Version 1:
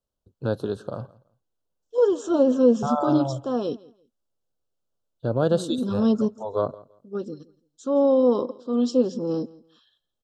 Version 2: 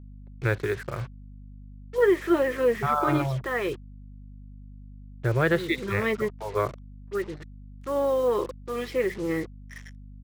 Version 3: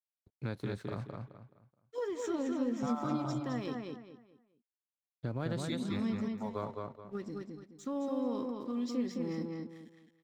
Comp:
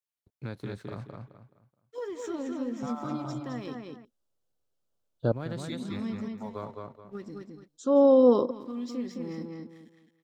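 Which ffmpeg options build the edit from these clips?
-filter_complex "[0:a]asplit=2[s0][s1];[2:a]asplit=3[s2][s3][s4];[s2]atrim=end=4.052[s5];[s0]atrim=start=4.048:end=5.322[s6];[s3]atrim=start=5.318:end=7.682[s7];[s1]atrim=start=7.678:end=8.512[s8];[s4]atrim=start=8.508[s9];[s5][s6]acrossfade=d=0.004:c1=hsin:c2=hsin[s10];[s10][s7]acrossfade=d=0.004:c1=hsin:c2=hsin[s11];[s11][s8]acrossfade=d=0.004:c1=hsin:c2=hsin[s12];[s12][s9]acrossfade=d=0.004:c1=hsin:c2=hsin"

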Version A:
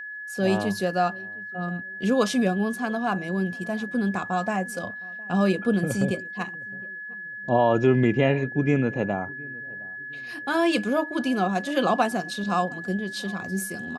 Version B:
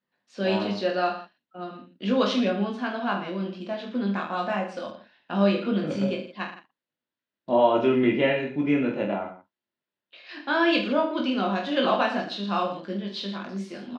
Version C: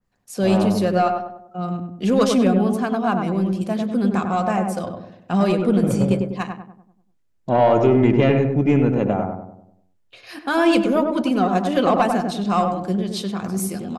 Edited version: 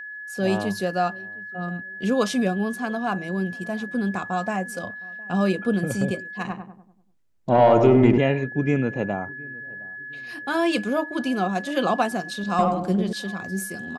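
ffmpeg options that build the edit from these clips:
-filter_complex "[2:a]asplit=2[s0][s1];[0:a]asplit=3[s2][s3][s4];[s2]atrim=end=6.452[s5];[s0]atrim=start=6.448:end=8.182[s6];[s3]atrim=start=8.178:end=12.592[s7];[s1]atrim=start=12.588:end=13.132[s8];[s4]atrim=start=13.128[s9];[s5][s6]acrossfade=d=0.004:c1=hsin:c2=hsin[s10];[s10][s7]acrossfade=d=0.004:c1=hsin:c2=hsin[s11];[s11][s8]acrossfade=d=0.004:c1=hsin:c2=hsin[s12];[s12][s9]acrossfade=d=0.004:c1=hsin:c2=hsin"

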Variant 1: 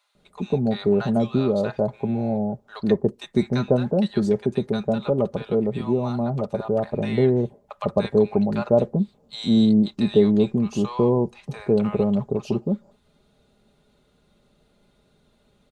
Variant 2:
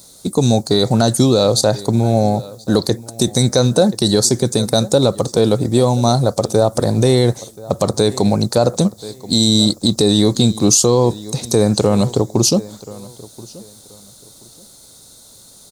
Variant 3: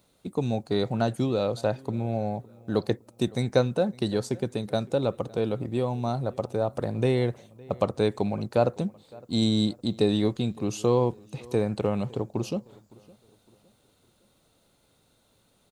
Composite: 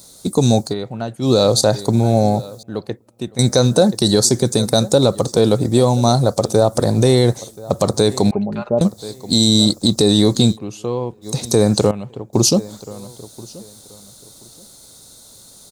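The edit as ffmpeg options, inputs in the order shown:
-filter_complex "[2:a]asplit=4[s0][s1][s2][s3];[1:a]asplit=6[s4][s5][s6][s7][s8][s9];[s4]atrim=end=0.75[s10];[s0]atrim=start=0.65:end=1.31[s11];[s5]atrim=start=1.21:end=2.632[s12];[s1]atrim=start=2.628:end=3.392[s13];[s6]atrim=start=3.388:end=8.312[s14];[0:a]atrim=start=8.308:end=8.812[s15];[s7]atrim=start=8.808:end=10.58[s16];[s2]atrim=start=10.52:end=11.27[s17];[s8]atrim=start=11.21:end=11.912[s18];[s3]atrim=start=11.908:end=12.332[s19];[s9]atrim=start=12.328[s20];[s10][s11]acrossfade=d=0.1:c1=tri:c2=tri[s21];[s21][s12]acrossfade=d=0.1:c1=tri:c2=tri[s22];[s22][s13]acrossfade=d=0.004:c1=hsin:c2=hsin[s23];[s23][s14]acrossfade=d=0.004:c1=hsin:c2=hsin[s24];[s24][s15]acrossfade=d=0.004:c1=hsin:c2=hsin[s25];[s25][s16]acrossfade=d=0.004:c1=hsin:c2=hsin[s26];[s26][s17]acrossfade=d=0.06:c1=tri:c2=tri[s27];[s27][s18]acrossfade=d=0.06:c1=tri:c2=tri[s28];[s28][s19]acrossfade=d=0.004:c1=hsin:c2=hsin[s29];[s29][s20]acrossfade=d=0.004:c1=hsin:c2=hsin"

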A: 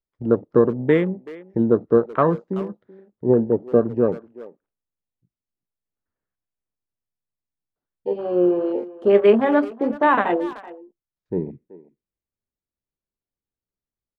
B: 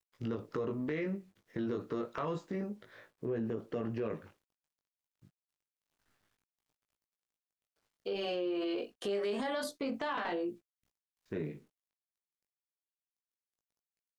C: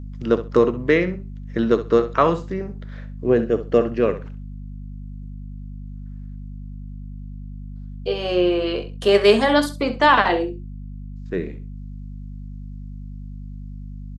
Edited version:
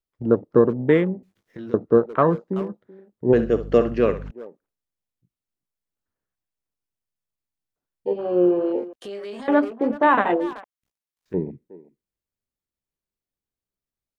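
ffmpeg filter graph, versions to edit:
-filter_complex "[1:a]asplit=3[s0][s1][s2];[0:a]asplit=5[s3][s4][s5][s6][s7];[s3]atrim=end=1.232[s8];[s0]atrim=start=1.228:end=1.742[s9];[s4]atrim=start=1.738:end=3.332[s10];[2:a]atrim=start=3.328:end=4.312[s11];[s5]atrim=start=4.308:end=8.932[s12];[s1]atrim=start=8.928:end=9.482[s13];[s6]atrim=start=9.478:end=10.642[s14];[s2]atrim=start=10.638:end=11.342[s15];[s7]atrim=start=11.338[s16];[s8][s9]acrossfade=d=0.004:c1=hsin:c2=hsin[s17];[s17][s10]acrossfade=d=0.004:c1=hsin:c2=hsin[s18];[s18][s11]acrossfade=d=0.004:c1=hsin:c2=hsin[s19];[s19][s12]acrossfade=d=0.004:c1=hsin:c2=hsin[s20];[s20][s13]acrossfade=d=0.004:c1=hsin:c2=hsin[s21];[s21][s14]acrossfade=d=0.004:c1=hsin:c2=hsin[s22];[s22][s15]acrossfade=d=0.004:c1=hsin:c2=hsin[s23];[s23][s16]acrossfade=d=0.004:c1=hsin:c2=hsin"

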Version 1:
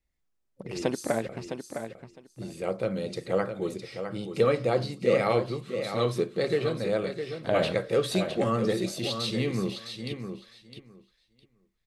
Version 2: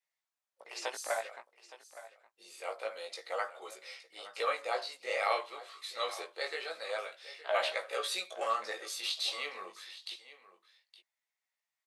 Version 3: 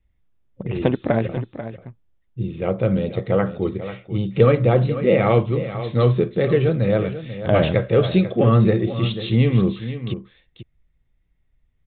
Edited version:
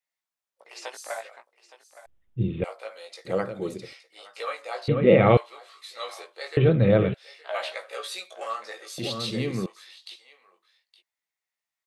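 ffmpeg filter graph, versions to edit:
-filter_complex "[2:a]asplit=3[s0][s1][s2];[0:a]asplit=2[s3][s4];[1:a]asplit=6[s5][s6][s7][s8][s9][s10];[s5]atrim=end=2.062[s11];[s0]atrim=start=2.058:end=2.642[s12];[s6]atrim=start=2.638:end=3.252[s13];[s3]atrim=start=3.248:end=3.932[s14];[s7]atrim=start=3.928:end=4.882[s15];[s1]atrim=start=4.878:end=5.372[s16];[s8]atrim=start=5.368:end=6.572[s17];[s2]atrim=start=6.568:end=7.142[s18];[s9]atrim=start=7.138:end=8.982[s19];[s4]atrim=start=8.978:end=9.662[s20];[s10]atrim=start=9.658[s21];[s11][s12]acrossfade=d=0.004:c1=hsin:c2=hsin[s22];[s22][s13]acrossfade=d=0.004:c1=hsin:c2=hsin[s23];[s23][s14]acrossfade=d=0.004:c1=hsin:c2=hsin[s24];[s24][s15]acrossfade=d=0.004:c1=hsin:c2=hsin[s25];[s25][s16]acrossfade=d=0.004:c1=hsin:c2=hsin[s26];[s26][s17]acrossfade=d=0.004:c1=hsin:c2=hsin[s27];[s27][s18]acrossfade=d=0.004:c1=hsin:c2=hsin[s28];[s28][s19]acrossfade=d=0.004:c1=hsin:c2=hsin[s29];[s29][s20]acrossfade=d=0.004:c1=hsin:c2=hsin[s30];[s30][s21]acrossfade=d=0.004:c1=hsin:c2=hsin"

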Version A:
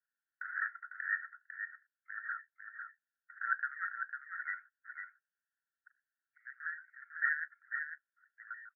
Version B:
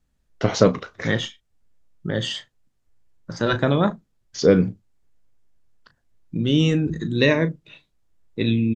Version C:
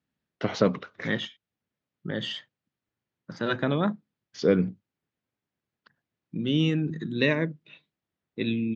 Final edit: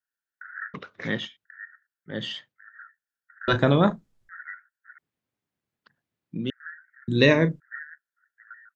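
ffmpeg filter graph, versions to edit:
-filter_complex "[2:a]asplit=3[s0][s1][s2];[1:a]asplit=2[s3][s4];[0:a]asplit=6[s5][s6][s7][s8][s9][s10];[s5]atrim=end=0.742[s11];[s0]atrim=start=0.738:end=1.452[s12];[s6]atrim=start=1.448:end=2.16[s13];[s1]atrim=start=2.06:end=2.6[s14];[s7]atrim=start=2.5:end=3.482[s15];[s3]atrim=start=3.478:end=4.292[s16];[s8]atrim=start=4.288:end=4.982[s17];[s2]atrim=start=4.978:end=6.502[s18];[s9]atrim=start=6.498:end=7.082[s19];[s4]atrim=start=7.078:end=7.602[s20];[s10]atrim=start=7.598[s21];[s11][s12]acrossfade=d=0.004:c1=hsin:c2=hsin[s22];[s22][s13]acrossfade=d=0.004:c1=hsin:c2=hsin[s23];[s23][s14]acrossfade=d=0.1:c1=tri:c2=tri[s24];[s24][s15]acrossfade=d=0.1:c1=tri:c2=tri[s25];[s25][s16]acrossfade=d=0.004:c1=hsin:c2=hsin[s26];[s26][s17]acrossfade=d=0.004:c1=hsin:c2=hsin[s27];[s27][s18]acrossfade=d=0.004:c1=hsin:c2=hsin[s28];[s28][s19]acrossfade=d=0.004:c1=hsin:c2=hsin[s29];[s29][s20]acrossfade=d=0.004:c1=hsin:c2=hsin[s30];[s30][s21]acrossfade=d=0.004:c1=hsin:c2=hsin"

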